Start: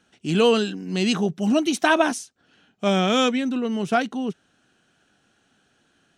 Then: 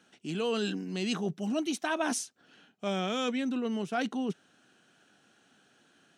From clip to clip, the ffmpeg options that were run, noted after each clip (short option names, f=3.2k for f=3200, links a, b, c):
-af "areverse,acompressor=threshold=-29dB:ratio=5,areverse,highpass=150"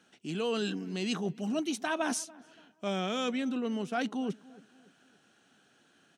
-filter_complex "[0:a]asplit=2[a][b];[b]adelay=287,lowpass=f=1.5k:p=1,volume=-20.5dB,asplit=2[c][d];[d]adelay=287,lowpass=f=1.5k:p=1,volume=0.42,asplit=2[e][f];[f]adelay=287,lowpass=f=1.5k:p=1,volume=0.42[g];[a][c][e][g]amix=inputs=4:normalize=0,volume=-1dB"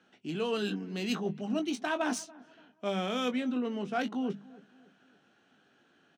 -filter_complex "[0:a]bandreject=f=50:t=h:w=6,bandreject=f=100:t=h:w=6,bandreject=f=150:t=h:w=6,bandreject=f=200:t=h:w=6,acrossover=split=260[a][b];[b]adynamicsmooth=sensitivity=7:basefreq=4.3k[c];[a][c]amix=inputs=2:normalize=0,asplit=2[d][e];[e]adelay=20,volume=-8.5dB[f];[d][f]amix=inputs=2:normalize=0"